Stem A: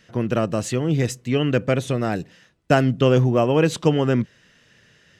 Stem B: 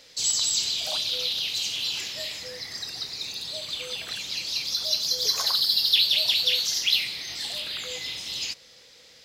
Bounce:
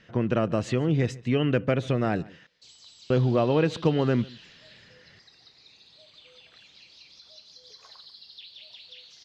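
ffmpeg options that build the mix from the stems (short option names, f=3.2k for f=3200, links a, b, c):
-filter_complex "[0:a]acompressor=threshold=-21dB:ratio=2,volume=-0.5dB,asplit=3[a][b][c];[a]atrim=end=2.47,asetpts=PTS-STARTPTS,afade=t=out:st=2.466:d=0.004:c=hsin[d];[b]atrim=start=2.47:end=3.1,asetpts=PTS-STARTPTS,volume=0[e];[c]atrim=start=3.1,asetpts=PTS-STARTPTS,afade=t=in:d=0.004:c=hsin[f];[d][e][f]concat=n=3:v=0:a=1,asplit=2[g][h];[h]volume=-23dB[i];[1:a]acompressor=threshold=-28dB:ratio=2,adelay=2450,volume=-17dB,asplit=2[j][k];[k]volume=-14.5dB[l];[i][l]amix=inputs=2:normalize=0,aecho=0:1:143:1[m];[g][j][m]amix=inputs=3:normalize=0,lowpass=3.8k"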